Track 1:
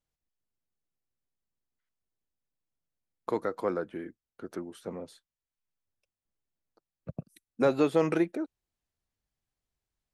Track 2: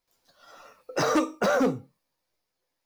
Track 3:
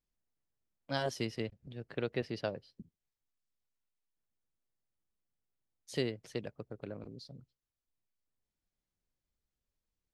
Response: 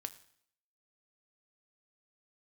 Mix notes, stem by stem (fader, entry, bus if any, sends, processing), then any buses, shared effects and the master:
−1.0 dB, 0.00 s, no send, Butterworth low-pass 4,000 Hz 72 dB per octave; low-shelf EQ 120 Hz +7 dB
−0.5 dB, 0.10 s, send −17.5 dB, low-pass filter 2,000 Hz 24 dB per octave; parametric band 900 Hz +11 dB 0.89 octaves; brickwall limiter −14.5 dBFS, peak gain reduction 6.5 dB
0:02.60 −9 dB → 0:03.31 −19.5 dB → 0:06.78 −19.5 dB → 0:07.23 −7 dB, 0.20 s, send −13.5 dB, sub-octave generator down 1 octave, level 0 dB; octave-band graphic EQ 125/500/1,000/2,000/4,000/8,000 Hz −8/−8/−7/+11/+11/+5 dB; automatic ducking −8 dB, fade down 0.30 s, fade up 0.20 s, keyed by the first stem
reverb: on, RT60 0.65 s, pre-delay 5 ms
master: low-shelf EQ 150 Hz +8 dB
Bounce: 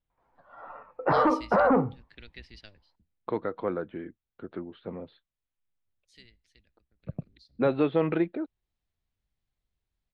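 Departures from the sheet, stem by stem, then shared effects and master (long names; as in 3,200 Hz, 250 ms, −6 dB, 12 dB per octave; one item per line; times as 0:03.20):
stem 1: missing low-shelf EQ 120 Hz +7 dB
stem 3 −9.0 dB → −16.0 dB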